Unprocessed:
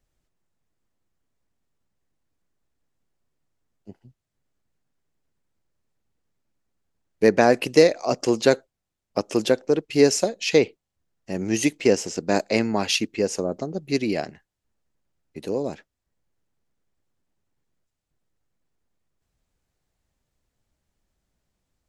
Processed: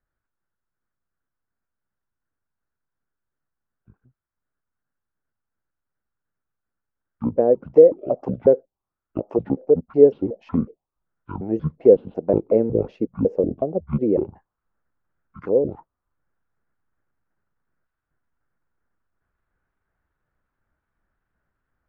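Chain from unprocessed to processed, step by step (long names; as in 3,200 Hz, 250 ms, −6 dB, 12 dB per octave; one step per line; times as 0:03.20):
pitch shifter gated in a rhythm −11 semitones, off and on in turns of 184 ms
speech leveller 2 s
envelope-controlled low-pass 500–1,500 Hz down, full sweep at −19.5 dBFS
level −3.5 dB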